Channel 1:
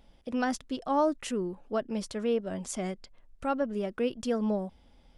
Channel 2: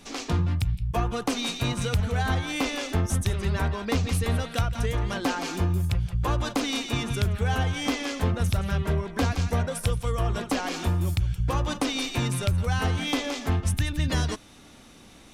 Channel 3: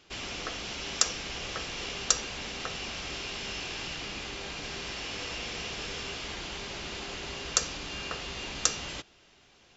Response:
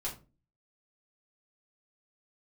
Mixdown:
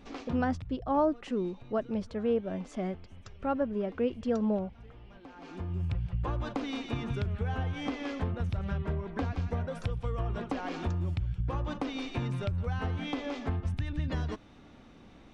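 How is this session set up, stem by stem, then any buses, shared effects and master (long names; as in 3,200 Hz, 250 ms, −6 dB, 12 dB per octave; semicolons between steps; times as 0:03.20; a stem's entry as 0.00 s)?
+1.0 dB, 0.00 s, no send, no processing
−1.5 dB, 0.00 s, no send, downward compressor, threshold −26 dBFS, peak gain reduction 7.5 dB; automatic ducking −19 dB, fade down 1.20 s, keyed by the first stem
−16.0 dB, 2.25 s, no send, spectral dynamics exaggerated over time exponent 2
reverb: not used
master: head-to-tape spacing loss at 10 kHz 27 dB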